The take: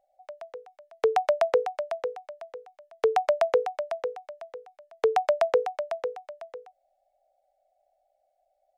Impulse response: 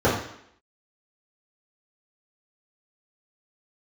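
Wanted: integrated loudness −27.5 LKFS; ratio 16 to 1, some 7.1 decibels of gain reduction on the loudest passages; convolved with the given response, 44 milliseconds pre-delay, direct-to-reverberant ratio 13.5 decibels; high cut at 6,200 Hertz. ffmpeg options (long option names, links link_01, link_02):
-filter_complex "[0:a]lowpass=6200,acompressor=threshold=-25dB:ratio=16,asplit=2[link_01][link_02];[1:a]atrim=start_sample=2205,adelay=44[link_03];[link_02][link_03]afir=irnorm=-1:irlink=0,volume=-33.5dB[link_04];[link_01][link_04]amix=inputs=2:normalize=0,volume=6dB"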